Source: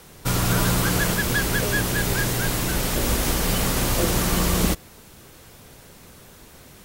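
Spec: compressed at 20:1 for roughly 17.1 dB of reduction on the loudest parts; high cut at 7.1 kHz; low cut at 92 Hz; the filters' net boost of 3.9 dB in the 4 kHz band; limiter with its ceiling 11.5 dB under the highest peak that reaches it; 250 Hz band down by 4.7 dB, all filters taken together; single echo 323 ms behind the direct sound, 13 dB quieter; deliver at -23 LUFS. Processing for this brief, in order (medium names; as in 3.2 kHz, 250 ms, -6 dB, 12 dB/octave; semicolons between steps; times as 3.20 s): high-pass 92 Hz; low-pass 7.1 kHz; peaking EQ 250 Hz -7 dB; peaking EQ 4 kHz +5.5 dB; compression 20:1, threshold -36 dBFS; peak limiter -35.5 dBFS; delay 323 ms -13 dB; trim +21 dB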